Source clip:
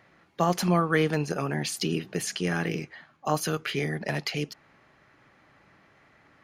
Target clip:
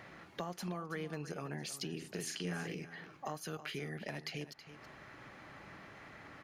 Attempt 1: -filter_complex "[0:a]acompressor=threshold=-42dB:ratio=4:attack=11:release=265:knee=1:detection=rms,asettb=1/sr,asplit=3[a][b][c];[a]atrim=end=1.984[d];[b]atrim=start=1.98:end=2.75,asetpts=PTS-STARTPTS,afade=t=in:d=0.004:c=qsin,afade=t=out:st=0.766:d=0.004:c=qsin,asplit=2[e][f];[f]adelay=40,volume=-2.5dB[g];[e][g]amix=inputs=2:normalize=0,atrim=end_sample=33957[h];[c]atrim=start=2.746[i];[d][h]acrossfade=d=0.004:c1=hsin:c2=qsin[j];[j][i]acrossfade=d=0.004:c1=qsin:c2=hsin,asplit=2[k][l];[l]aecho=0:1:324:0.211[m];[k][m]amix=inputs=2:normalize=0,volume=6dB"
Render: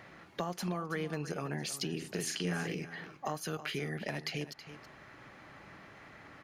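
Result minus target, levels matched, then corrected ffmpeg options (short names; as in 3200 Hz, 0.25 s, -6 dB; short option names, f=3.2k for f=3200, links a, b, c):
compressor: peak gain reduction -5 dB
-filter_complex "[0:a]acompressor=threshold=-48.5dB:ratio=4:attack=11:release=265:knee=1:detection=rms,asettb=1/sr,asplit=3[a][b][c];[a]atrim=end=1.984[d];[b]atrim=start=1.98:end=2.75,asetpts=PTS-STARTPTS,afade=t=in:d=0.004:c=qsin,afade=t=out:st=0.766:d=0.004:c=qsin,asplit=2[e][f];[f]adelay=40,volume=-2.5dB[g];[e][g]amix=inputs=2:normalize=0,atrim=end_sample=33957[h];[c]atrim=start=2.746[i];[d][h]acrossfade=d=0.004:c1=hsin:c2=qsin[j];[j][i]acrossfade=d=0.004:c1=qsin:c2=hsin,asplit=2[k][l];[l]aecho=0:1:324:0.211[m];[k][m]amix=inputs=2:normalize=0,volume=6dB"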